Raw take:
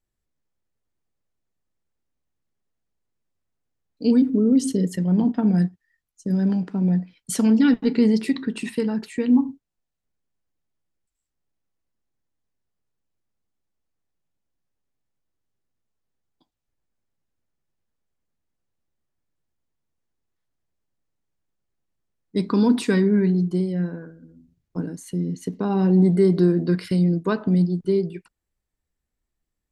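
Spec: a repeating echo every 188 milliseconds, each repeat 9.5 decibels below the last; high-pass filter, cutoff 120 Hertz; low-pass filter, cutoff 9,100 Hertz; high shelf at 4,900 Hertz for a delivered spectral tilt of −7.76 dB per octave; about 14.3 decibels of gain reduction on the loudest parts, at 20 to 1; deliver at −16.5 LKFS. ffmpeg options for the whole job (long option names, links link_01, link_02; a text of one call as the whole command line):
ffmpeg -i in.wav -af "highpass=120,lowpass=9100,highshelf=frequency=4900:gain=-5,acompressor=threshold=-27dB:ratio=20,aecho=1:1:188|376|564|752:0.335|0.111|0.0365|0.012,volume=15.5dB" out.wav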